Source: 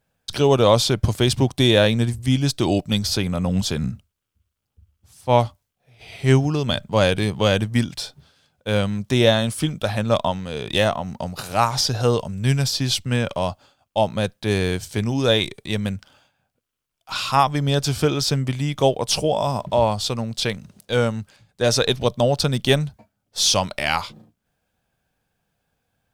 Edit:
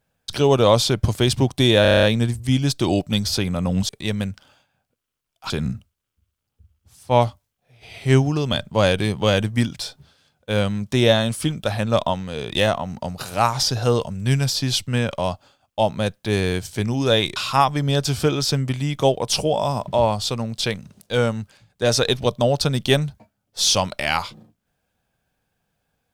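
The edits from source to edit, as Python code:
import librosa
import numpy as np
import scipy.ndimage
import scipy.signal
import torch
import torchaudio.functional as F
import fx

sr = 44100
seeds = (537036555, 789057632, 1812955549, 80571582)

y = fx.edit(x, sr, fx.stutter(start_s=1.82, slice_s=0.03, count=8),
    fx.move(start_s=15.54, length_s=1.61, to_s=3.68), tone=tone)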